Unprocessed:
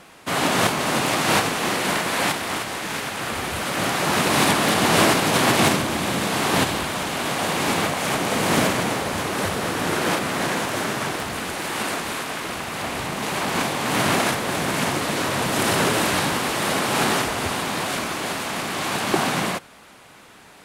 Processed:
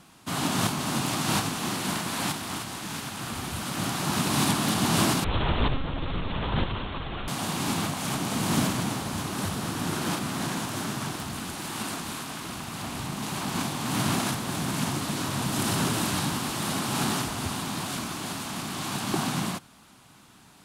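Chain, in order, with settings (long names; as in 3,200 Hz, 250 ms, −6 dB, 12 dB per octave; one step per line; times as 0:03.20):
octave-band graphic EQ 125/250/500/2,000 Hz +4/+3/−11/−8 dB
0:05.24–0:07.28: one-pitch LPC vocoder at 8 kHz 270 Hz
level −4 dB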